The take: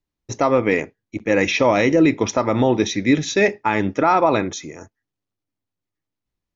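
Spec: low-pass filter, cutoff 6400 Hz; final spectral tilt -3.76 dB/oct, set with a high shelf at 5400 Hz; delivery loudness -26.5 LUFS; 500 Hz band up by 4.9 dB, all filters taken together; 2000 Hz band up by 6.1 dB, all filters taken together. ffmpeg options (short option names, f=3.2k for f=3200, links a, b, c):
-af "lowpass=6.4k,equalizer=f=500:t=o:g=5.5,equalizer=f=2k:t=o:g=6,highshelf=f=5.4k:g=6,volume=-12dB"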